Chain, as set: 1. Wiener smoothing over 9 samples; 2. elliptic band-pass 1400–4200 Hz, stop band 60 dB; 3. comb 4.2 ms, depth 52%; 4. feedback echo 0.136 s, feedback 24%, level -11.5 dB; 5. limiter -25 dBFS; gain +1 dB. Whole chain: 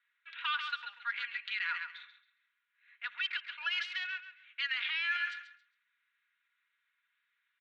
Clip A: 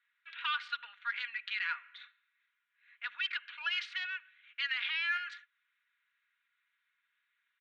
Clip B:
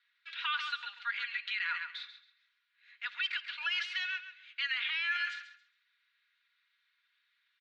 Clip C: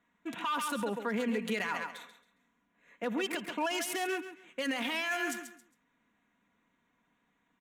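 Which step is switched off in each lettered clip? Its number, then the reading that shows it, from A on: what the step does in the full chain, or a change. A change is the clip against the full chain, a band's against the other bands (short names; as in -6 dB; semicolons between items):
4, momentary loudness spread change +2 LU; 1, momentary loudness spread change +1 LU; 2, momentary loudness spread change -2 LU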